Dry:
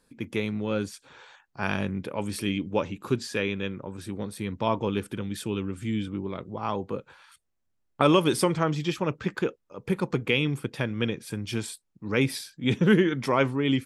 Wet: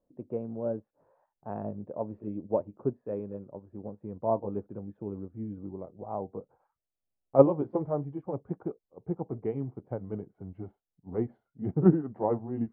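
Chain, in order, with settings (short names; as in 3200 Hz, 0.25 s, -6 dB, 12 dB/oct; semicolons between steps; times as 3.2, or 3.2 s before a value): gliding pitch shift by -4 st starting unshifted; in parallel at -2.5 dB: level quantiser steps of 19 dB; on the sum: ladder low-pass 740 Hz, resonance 50%; speed mistake 44.1 kHz file played as 48 kHz; upward expander 1.5:1, over -44 dBFS; gain +7.5 dB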